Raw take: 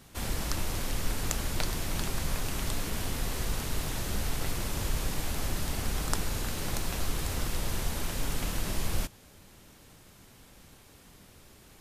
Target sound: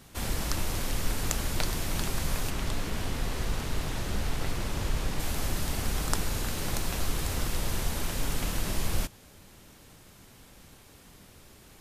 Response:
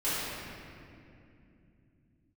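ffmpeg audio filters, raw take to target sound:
-filter_complex "[0:a]asettb=1/sr,asplit=3[s0][s1][s2];[s0]atrim=end=2.504[s3];[s1]atrim=start=2.5:end=5.2,asetpts=PTS-STARTPTS,afade=t=in:d=0.004:c=qsin,afade=t=out:st=2.696:d=0.004:c=qsin,highshelf=f=6900:g=-9.5[s4];[s2]atrim=start=5.196[s5];[s3][s4]acrossfade=d=0.004:c1=hsin:c2=qsin[s6];[s6][s5]acrossfade=d=0.004:c1=qsin:c2=hsin,volume=1.19"

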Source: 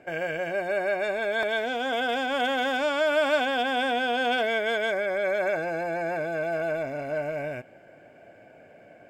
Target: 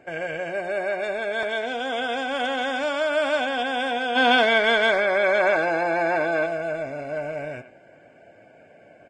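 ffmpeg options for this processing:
-filter_complex "[0:a]asplit=3[s0][s1][s2];[s0]afade=t=out:st=4.15:d=0.02[s3];[s1]equalizer=f=125:t=o:w=1:g=-7,equalizer=f=250:t=o:w=1:g=10,equalizer=f=1000:t=o:w=1:g=11,equalizer=f=2000:t=o:w=1:g=4,equalizer=f=4000:t=o:w=1:g=9,afade=t=in:st=4.15:d=0.02,afade=t=out:st=6.45:d=0.02[s4];[s2]afade=t=in:st=6.45:d=0.02[s5];[s3][s4][s5]amix=inputs=3:normalize=0,asplit=2[s6][s7];[s7]adelay=90,highpass=300,lowpass=3400,asoftclip=type=hard:threshold=0.15,volume=0.251[s8];[s6][s8]amix=inputs=2:normalize=0" -ar 22050 -c:a libvorbis -b:a 32k

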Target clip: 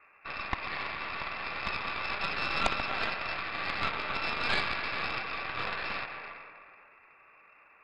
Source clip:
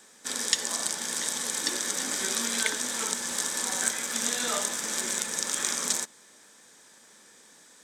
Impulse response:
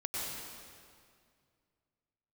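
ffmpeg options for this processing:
-filter_complex "[0:a]lowpass=f=2500:t=q:w=0.5098,lowpass=f=2500:t=q:w=0.6013,lowpass=f=2500:t=q:w=0.9,lowpass=f=2500:t=q:w=2.563,afreqshift=-2900,asplit=2[s0][s1];[1:a]atrim=start_sample=2205,adelay=136[s2];[s1][s2]afir=irnorm=-1:irlink=0,volume=0.422[s3];[s0][s3]amix=inputs=2:normalize=0,aeval=exprs='0.211*(cos(1*acos(clip(val(0)/0.211,-1,1)))-cos(1*PI/2))+0.075*(cos(6*acos(clip(val(0)/0.211,-1,1)))-cos(6*PI/2))+0.00668*(cos(8*acos(clip(val(0)/0.211,-1,1)))-cos(8*PI/2))':c=same"

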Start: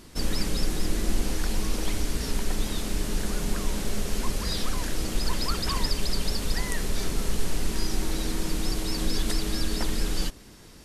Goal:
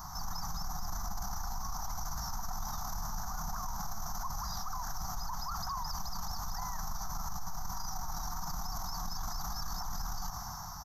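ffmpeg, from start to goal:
-af "firequalizer=gain_entry='entry(170,0);entry(250,-19);entry(470,-29);entry(740,12);entry(1200,12);entry(1700,-5);entry(2600,-25);entry(6000,10);entry(8900,-27);entry(13000,10)':delay=0.05:min_phase=1,dynaudnorm=f=110:g=13:m=2.51,alimiter=level_in=2.99:limit=0.0631:level=0:latency=1:release=51,volume=0.335,volume=1.58"

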